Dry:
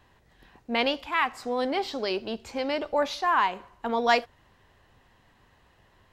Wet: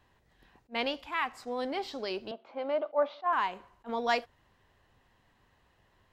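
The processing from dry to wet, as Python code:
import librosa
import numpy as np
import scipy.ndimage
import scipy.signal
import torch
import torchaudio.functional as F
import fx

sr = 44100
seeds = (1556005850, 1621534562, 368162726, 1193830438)

y = fx.cabinet(x, sr, low_hz=210.0, low_slope=24, high_hz=3000.0, hz=(210.0, 420.0, 630.0, 1200.0, 1800.0, 2600.0), db=(-10, -7, 10, 5, -7, -7), at=(2.31, 3.33))
y = fx.attack_slew(y, sr, db_per_s=450.0)
y = y * librosa.db_to_amplitude(-6.5)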